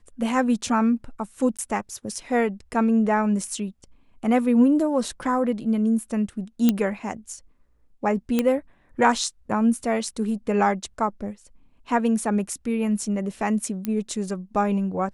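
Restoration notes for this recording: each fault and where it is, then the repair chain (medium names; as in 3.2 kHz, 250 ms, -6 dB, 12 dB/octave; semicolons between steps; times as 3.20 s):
1.57–1.59 s: dropout 16 ms
6.69 s: pop -6 dBFS
8.39 s: pop -8 dBFS
13.85 s: pop -13 dBFS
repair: de-click; interpolate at 1.57 s, 16 ms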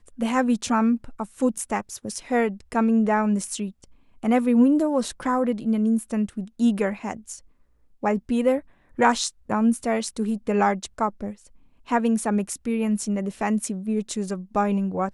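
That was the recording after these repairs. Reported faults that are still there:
13.85 s: pop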